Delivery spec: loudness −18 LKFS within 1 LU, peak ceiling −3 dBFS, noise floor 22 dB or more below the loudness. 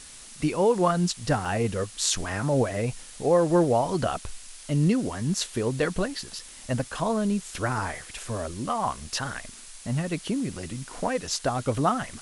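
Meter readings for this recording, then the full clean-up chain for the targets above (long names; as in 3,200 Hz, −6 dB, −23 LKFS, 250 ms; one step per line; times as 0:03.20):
number of dropouts 2; longest dropout 3.7 ms; background noise floor −45 dBFS; target noise floor −49 dBFS; integrated loudness −27.0 LKFS; sample peak −8.0 dBFS; target loudness −18.0 LKFS
→ repair the gap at 0:01.45/0:06.39, 3.7 ms
noise reduction from a noise print 6 dB
level +9 dB
brickwall limiter −3 dBFS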